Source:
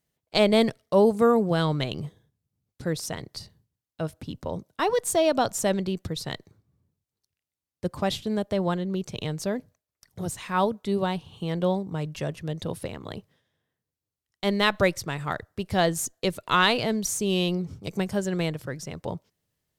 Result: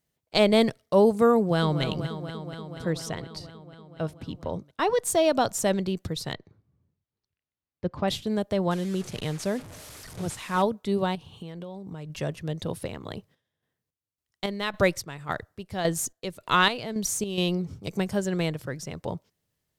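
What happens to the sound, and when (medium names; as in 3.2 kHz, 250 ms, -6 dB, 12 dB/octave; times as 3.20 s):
1.38–1.82 s: echo throw 240 ms, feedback 80%, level -10 dB
2.83–5.03 s: treble shelf 8.2 kHz -9.5 dB
6.33–8.08 s: distance through air 200 m
8.71–10.62 s: one-bit delta coder 64 kbps, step -37.5 dBFS
11.15–12.10 s: compression 16:1, threshold -34 dBFS
13.07–17.38 s: square tremolo 1.8 Hz, depth 60%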